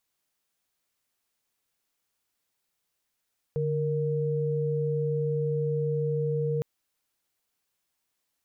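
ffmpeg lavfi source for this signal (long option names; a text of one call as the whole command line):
ffmpeg -f lavfi -i "aevalsrc='0.0422*(sin(2*PI*146.83*t)+sin(2*PI*466.16*t))':duration=3.06:sample_rate=44100" out.wav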